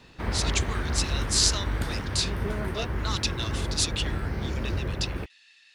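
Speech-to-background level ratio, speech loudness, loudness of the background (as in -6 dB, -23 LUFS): 2.0 dB, -29.0 LUFS, -31.0 LUFS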